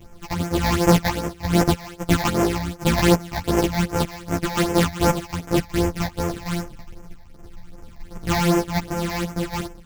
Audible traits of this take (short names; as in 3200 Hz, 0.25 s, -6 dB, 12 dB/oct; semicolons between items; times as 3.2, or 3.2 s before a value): a buzz of ramps at a fixed pitch in blocks of 256 samples; phasing stages 8, 2.6 Hz, lowest notch 370–4000 Hz; random-step tremolo; a shimmering, thickened sound